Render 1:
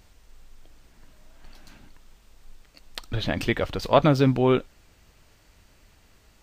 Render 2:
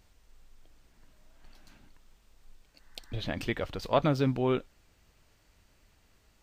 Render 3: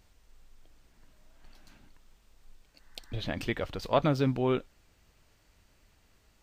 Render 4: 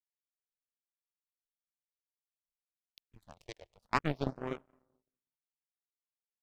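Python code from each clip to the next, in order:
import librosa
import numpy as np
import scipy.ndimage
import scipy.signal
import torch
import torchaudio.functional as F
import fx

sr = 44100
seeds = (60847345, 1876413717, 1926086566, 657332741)

y1 = fx.spec_repair(x, sr, seeds[0], start_s=2.62, length_s=0.57, low_hz=820.0, high_hz=2100.0, source='both')
y1 = y1 * librosa.db_to_amplitude(-7.5)
y2 = y1
y3 = fx.rev_freeverb(y2, sr, rt60_s=2.4, hf_ratio=0.25, predelay_ms=100, drr_db=10.5)
y3 = fx.power_curve(y3, sr, exponent=3.0)
y3 = fx.phaser_stages(y3, sr, stages=4, low_hz=220.0, high_hz=4700.0, hz=0.49, feedback_pct=0)
y3 = y3 * librosa.db_to_amplitude(8.0)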